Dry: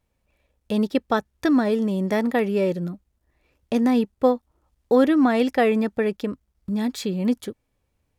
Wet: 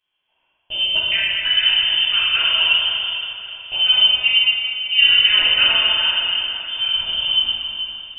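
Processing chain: HPF 120 Hz; inverted band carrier 3300 Hz; on a send: diffused feedback echo 0.492 s, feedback 46%, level -16 dB; on the sum: plate-style reverb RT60 2.7 s, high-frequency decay 0.85×, DRR -9 dB; gain -4.5 dB

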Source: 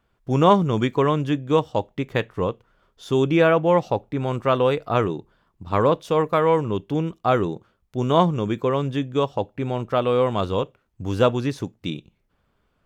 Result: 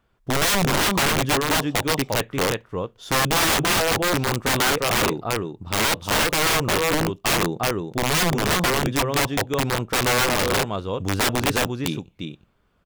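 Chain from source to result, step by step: echo 0.352 s -5.5 dB; wrapped overs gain 16 dB; gain +1.5 dB

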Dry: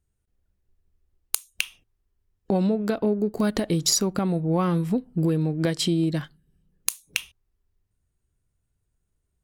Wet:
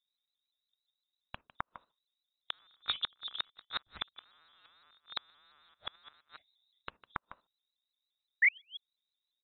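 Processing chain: rattling part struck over -35 dBFS, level -10 dBFS; HPF 47 Hz 12 dB/oct; notch 690 Hz, Q 12; level quantiser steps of 12 dB; painted sound fall, 8.42–8.62, 530–2200 Hz -17 dBFS; echo 0.153 s -16 dB; inverted band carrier 3800 Hz; flipped gate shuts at -14 dBFS, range -36 dB; shaped vibrato saw up 5.8 Hz, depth 100 cents; gain -5.5 dB

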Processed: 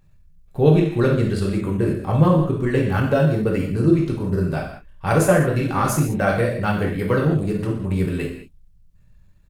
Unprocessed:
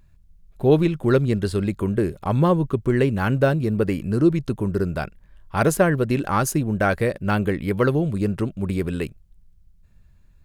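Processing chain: non-linear reverb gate 0.26 s falling, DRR -2.5 dB; tempo 1.1×; gain -3 dB

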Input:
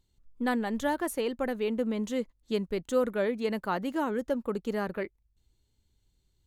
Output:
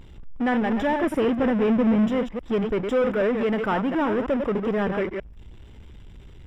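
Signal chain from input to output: reverse delay 0.104 s, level -9.5 dB; 1.03–2.1 bell 130 Hz +14 dB 1.8 oct; power-law curve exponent 0.5; polynomial smoothing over 25 samples

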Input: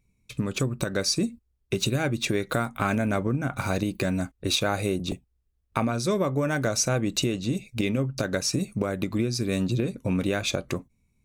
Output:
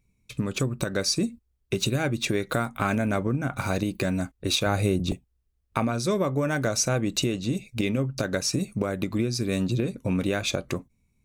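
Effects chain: 4.66–5.12 low shelf 170 Hz +9 dB

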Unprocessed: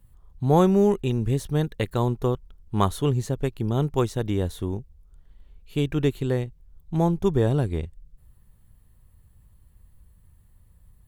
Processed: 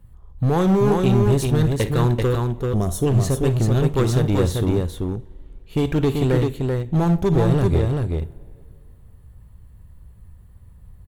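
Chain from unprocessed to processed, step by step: two-slope reverb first 0.22 s, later 2.3 s, from -20 dB, DRR 14 dB; limiter -15 dBFS, peak gain reduction 9 dB; hard clip -22 dBFS, distortion -11 dB; spectral gain 2.6–3.07, 770–5100 Hz -12 dB; tapped delay 58/387 ms -15/-3.5 dB; mismatched tape noise reduction decoder only; gain +8 dB

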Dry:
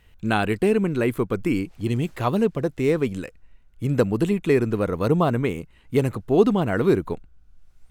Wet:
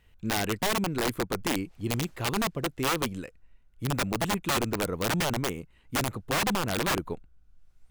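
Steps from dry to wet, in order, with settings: wrapped overs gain 15 dB; gain -6 dB

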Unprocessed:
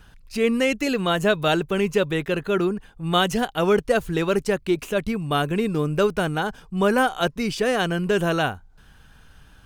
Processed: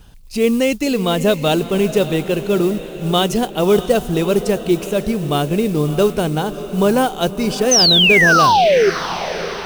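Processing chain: modulation noise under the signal 23 dB; bell 1600 Hz -10 dB 1.1 oct; painted sound fall, 7.71–8.9, 370–6400 Hz -18 dBFS; on a send: diffused feedback echo 0.623 s, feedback 53%, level -12.5 dB; on the sum: gain +6 dB

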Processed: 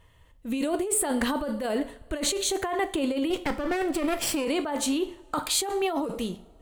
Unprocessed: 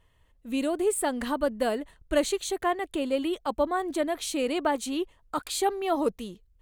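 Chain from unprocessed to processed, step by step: 3.3–4.45 minimum comb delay 0.38 ms; two-slope reverb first 0.44 s, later 2.3 s, from -26 dB, DRR 10.5 dB; negative-ratio compressor -30 dBFS, ratio -1; gain +3.5 dB

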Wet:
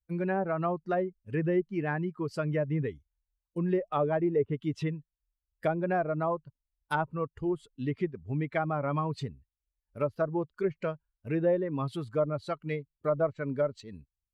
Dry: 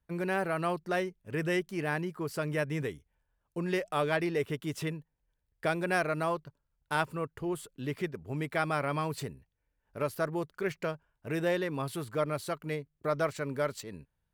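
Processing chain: per-bin expansion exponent 1.5; treble ducked by the level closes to 840 Hz, closed at -29.5 dBFS; gain +6 dB

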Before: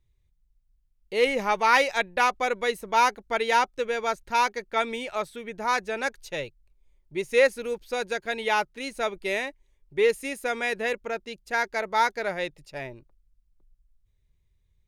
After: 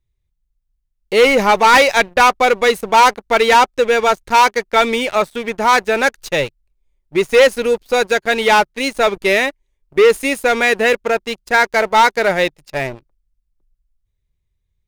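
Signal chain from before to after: sample leveller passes 3; gain +3.5 dB

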